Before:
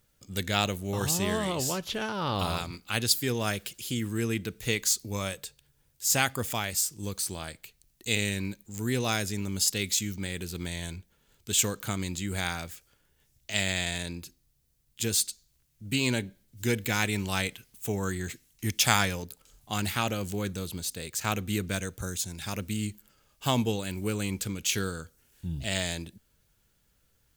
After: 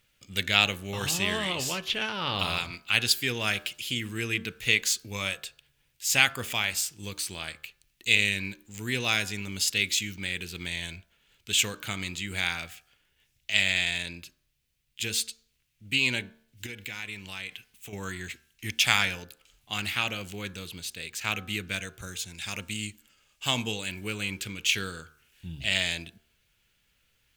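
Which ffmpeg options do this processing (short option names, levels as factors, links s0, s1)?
-filter_complex "[0:a]asettb=1/sr,asplit=3[s0][s1][s2];[s0]atrim=end=16.664[s3];[s1]atrim=start=16.66:end=17.93,asetpts=PTS-STARTPTS,afade=t=in:d=0.004:c=qsin,afade=t=out:st=1.266:d=0.004:c=qsin,acompressor=threshold=0.0224:ratio=10:attack=3.2:release=140:knee=1:detection=peak[s4];[s2]atrim=start=17.926[s5];[s3][s4]acrossfade=d=0.004:c1=hsin:c2=qsin[s6];[s6][s5]acrossfade=d=0.004:c1=qsin:c2=hsin,asettb=1/sr,asplit=3[s7][s8][s9];[s7]atrim=end=22.344[s10];[s8]atrim=start=22.34:end=23.89,asetpts=PTS-STARTPTS,afade=t=in:d=0.004:c=qsin,afade=t=out:st=1.546:d=0.004:c=qsin,equalizer=f=7400:t=o:w=0.71:g=7.5[s11];[s9]atrim=start=23.886[s12];[s10][s11]acrossfade=d=0.004:c1=hsin:c2=qsin[s13];[s13][s12]acrossfade=d=0.004:c1=qsin:c2=hsin,equalizer=f=2600:w=0.96:g=14,bandreject=f=75.52:t=h:w=4,bandreject=f=151.04:t=h:w=4,bandreject=f=226.56:t=h:w=4,bandreject=f=302.08:t=h:w=4,bandreject=f=377.6:t=h:w=4,bandreject=f=453.12:t=h:w=4,bandreject=f=528.64:t=h:w=4,bandreject=f=604.16:t=h:w=4,bandreject=f=679.68:t=h:w=4,bandreject=f=755.2:t=h:w=4,bandreject=f=830.72:t=h:w=4,bandreject=f=906.24:t=h:w=4,bandreject=f=981.76:t=h:w=4,bandreject=f=1057.28:t=h:w=4,bandreject=f=1132.8:t=h:w=4,bandreject=f=1208.32:t=h:w=4,bandreject=f=1283.84:t=h:w=4,bandreject=f=1359.36:t=h:w=4,bandreject=f=1434.88:t=h:w=4,bandreject=f=1510.4:t=h:w=4,bandreject=f=1585.92:t=h:w=4,bandreject=f=1661.44:t=h:w=4,bandreject=f=1736.96:t=h:w=4,dynaudnorm=f=930:g=13:m=3.76,volume=0.708"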